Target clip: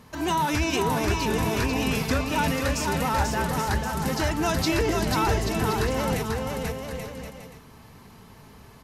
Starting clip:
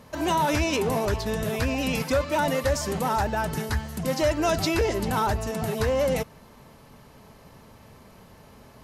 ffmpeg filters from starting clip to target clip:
-filter_complex "[0:a]equalizer=f=580:t=o:w=0.39:g=-9.5,asplit=2[a][b];[b]aecho=0:1:490|833|1073|1241|1359:0.631|0.398|0.251|0.158|0.1[c];[a][c]amix=inputs=2:normalize=0"

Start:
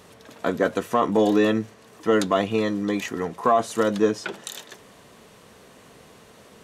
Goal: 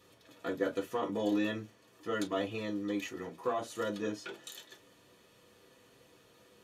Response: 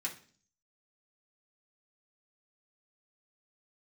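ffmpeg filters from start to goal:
-filter_complex "[1:a]atrim=start_sample=2205,atrim=end_sample=3969,asetrate=74970,aresample=44100[a];[0:a][a]afir=irnorm=-1:irlink=0,volume=-7.5dB"

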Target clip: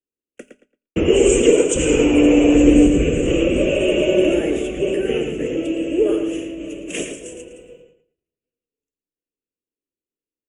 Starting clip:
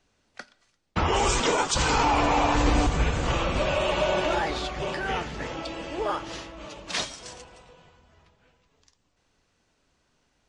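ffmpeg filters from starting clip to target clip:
-filter_complex "[0:a]agate=range=-35dB:threshold=-52dB:ratio=16:detection=peak,firequalizer=gain_entry='entry(110,0);entry(320,15);entry(480,13);entry(850,-18);entry(2800,7);entry(4200,-29);entry(6800,6);entry(9800,12)':delay=0.05:min_phase=1,asplit=2[a][b];[b]adelay=112,lowpass=f=4.2k:p=1,volume=-6.5dB,asplit=2[c][d];[d]adelay=112,lowpass=f=4.2k:p=1,volume=0.25,asplit=2[e][f];[f]adelay=112,lowpass=f=4.2k:p=1,volume=0.25[g];[c][e][g]amix=inputs=3:normalize=0[h];[a][h]amix=inputs=2:normalize=0,volume=1dB"

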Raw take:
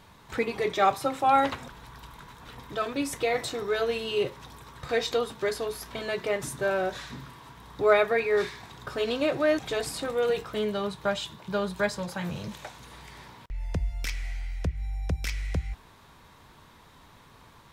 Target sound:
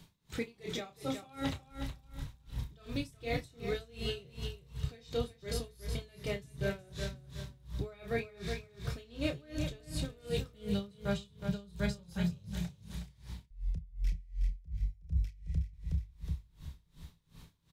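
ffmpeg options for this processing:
-filter_complex "[0:a]acrossover=split=110|3000[a][b][c];[a]dynaudnorm=f=340:g=9:m=15dB[d];[b]equalizer=f=1.1k:w=0.43:g=-13.5[e];[c]alimiter=level_in=7.5dB:limit=-24dB:level=0:latency=1:release=197,volume=-7.5dB[f];[d][e][f]amix=inputs=3:normalize=0,asplit=2[g][h];[h]adelay=30,volume=-6dB[i];[g][i]amix=inputs=2:normalize=0,aecho=1:1:368|736|1104|1472:0.398|0.123|0.0383|0.0119,areverse,acompressor=threshold=-26dB:ratio=12,areverse,equalizer=f=160:w=5.8:g=10,aeval=exprs='val(0)*pow(10,-26*(0.5-0.5*cos(2*PI*2.7*n/s))/20)':c=same"

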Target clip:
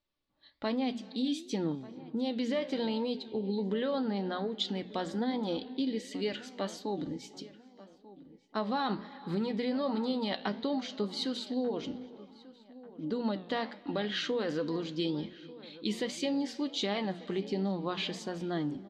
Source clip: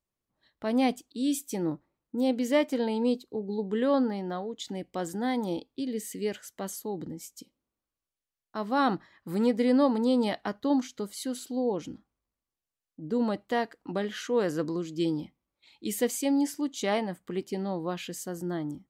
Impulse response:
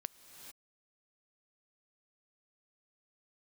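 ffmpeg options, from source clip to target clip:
-filter_complex "[0:a]flanger=delay=3.4:depth=1.9:regen=53:speed=0.15:shape=sinusoidal,alimiter=level_in=1.5dB:limit=-24dB:level=0:latency=1:release=37,volume=-1.5dB,flanger=delay=9.7:depth=7.5:regen=82:speed=1.3:shape=triangular,asplit=2[a][b];[1:a]atrim=start_sample=2205,lowpass=4.6k[c];[b][c]afir=irnorm=-1:irlink=0,volume=-8.5dB[d];[a][d]amix=inputs=2:normalize=0,acompressor=threshold=-36dB:ratio=6,lowpass=f=4k:t=q:w=2.7,bandreject=f=60:t=h:w=6,bandreject=f=120:t=h:w=6,bandreject=f=180:t=h:w=6,bandreject=f=240:t=h:w=6,asplit=2[e][f];[f]adelay=1190,lowpass=f=2.1k:p=1,volume=-18.5dB,asplit=2[g][h];[h]adelay=1190,lowpass=f=2.1k:p=1,volume=0.43,asplit=2[i][j];[j]adelay=1190,lowpass=f=2.1k:p=1,volume=0.43[k];[e][g][i][k]amix=inputs=4:normalize=0,volume=8dB"

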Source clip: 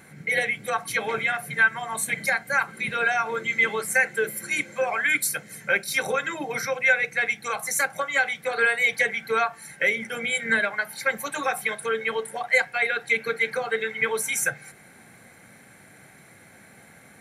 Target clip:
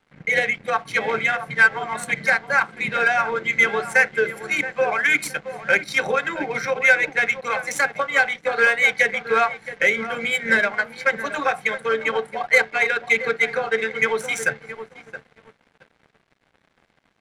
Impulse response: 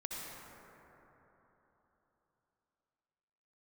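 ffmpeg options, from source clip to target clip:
-filter_complex "[0:a]highpass=100,asplit=2[a][b];[b]adelay=671,lowpass=f=1.6k:p=1,volume=-10dB,asplit=2[c][d];[d]adelay=671,lowpass=f=1.6k:p=1,volume=0.32,asplit=2[e][f];[f]adelay=671,lowpass=f=1.6k:p=1,volume=0.32,asplit=2[g][h];[h]adelay=671,lowpass=f=1.6k:p=1,volume=0.32[i];[c][e][g][i]amix=inputs=4:normalize=0[j];[a][j]amix=inputs=2:normalize=0,aeval=exprs='sgn(val(0))*max(abs(val(0))-0.00501,0)':c=same,adynamicsmooth=sensitivity=2:basefreq=3.5k,volume=5dB"

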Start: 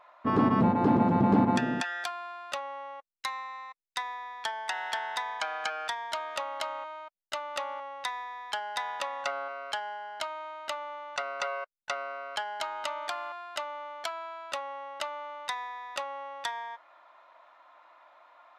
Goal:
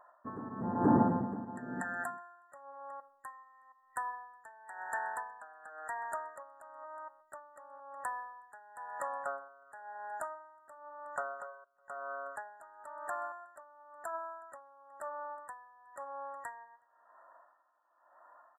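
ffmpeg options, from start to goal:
-filter_complex "[0:a]flanger=delay=1.2:depth=7.5:regen=85:speed=0.15:shape=triangular,asplit=2[a][b];[b]adelay=367.3,volume=-21dB,highshelf=f=4k:g=-8.27[c];[a][c]amix=inputs=2:normalize=0,afftfilt=real='re*(1-between(b*sr/4096,1900,7100))':imag='im*(1-between(b*sr/4096,1900,7100))':win_size=4096:overlap=0.75,aeval=exprs='val(0)*pow(10,-18*(0.5-0.5*cos(2*PI*0.98*n/s))/20)':c=same,volume=3dB"

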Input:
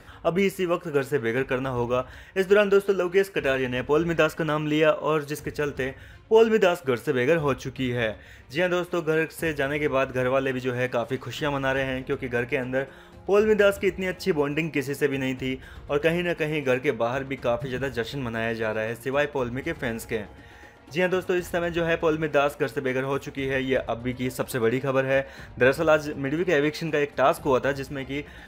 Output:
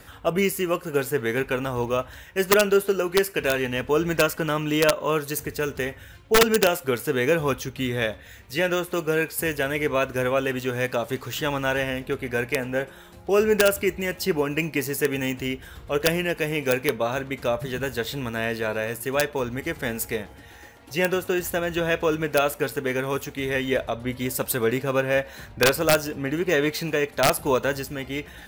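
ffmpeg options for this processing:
-af "aemphasis=mode=production:type=50kf,aeval=exprs='(mod(2.99*val(0)+1,2)-1)/2.99':c=same"

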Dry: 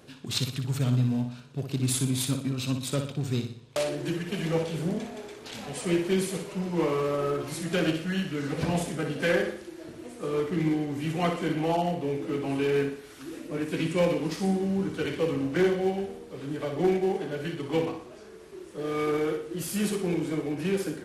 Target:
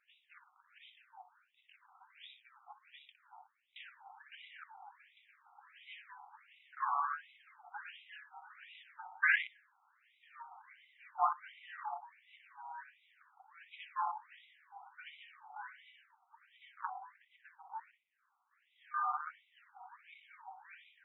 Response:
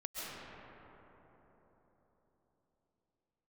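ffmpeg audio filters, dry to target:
-filter_complex "[0:a]asettb=1/sr,asplit=3[a][b][c];[a]atrim=end=16.814[d];[b]atrim=start=16.81:end=18.51,asetpts=PTS-STARTPTS,afade=t=in:d=0.004:c=qsin,afade=t=out:st=1.696:d=0.004:c=qsin,adynamicsmooth=sensitivity=3.5:basefreq=950[e];[c]atrim=start=18.506[f];[d][e]acrossfade=d=0.004:c1=hsin:c2=qsin[g];[g][f]acrossfade=d=0.004:c1=qsin:c2=hsin,afwtdn=0.0316,afftfilt=real='re*between(b*sr/1024,990*pow(2800/990,0.5+0.5*sin(2*PI*1.4*pts/sr))/1.41,990*pow(2800/990,0.5+0.5*sin(2*PI*1.4*pts/sr))*1.41)':imag='im*between(b*sr/1024,990*pow(2800/990,0.5+0.5*sin(2*PI*1.4*pts/sr))/1.41,990*pow(2800/990,0.5+0.5*sin(2*PI*1.4*pts/sr))*1.41)':win_size=1024:overlap=0.75,volume=4dB"

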